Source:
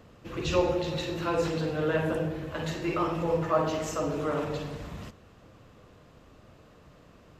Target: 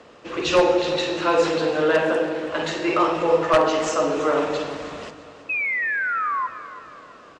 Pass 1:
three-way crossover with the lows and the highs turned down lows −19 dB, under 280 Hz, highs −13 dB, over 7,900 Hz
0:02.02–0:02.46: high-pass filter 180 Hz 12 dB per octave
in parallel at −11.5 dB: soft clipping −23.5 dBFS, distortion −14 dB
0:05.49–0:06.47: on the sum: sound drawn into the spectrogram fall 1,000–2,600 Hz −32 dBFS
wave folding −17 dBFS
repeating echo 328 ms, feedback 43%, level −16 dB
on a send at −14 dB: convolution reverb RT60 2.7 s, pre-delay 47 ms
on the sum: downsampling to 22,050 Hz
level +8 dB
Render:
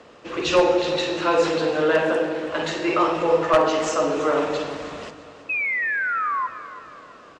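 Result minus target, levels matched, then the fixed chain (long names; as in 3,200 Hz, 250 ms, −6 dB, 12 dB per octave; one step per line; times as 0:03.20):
soft clipping: distortion +16 dB
three-way crossover with the lows and the highs turned down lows −19 dB, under 280 Hz, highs −13 dB, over 7,900 Hz
0:02.02–0:02.46: high-pass filter 180 Hz 12 dB per octave
in parallel at −11.5 dB: soft clipping −12 dBFS, distortion −30 dB
0:05.49–0:06.47: on the sum: sound drawn into the spectrogram fall 1,000–2,600 Hz −32 dBFS
wave folding −17 dBFS
repeating echo 328 ms, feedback 43%, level −16 dB
on a send at −14 dB: convolution reverb RT60 2.7 s, pre-delay 47 ms
on the sum: downsampling to 22,050 Hz
level +8 dB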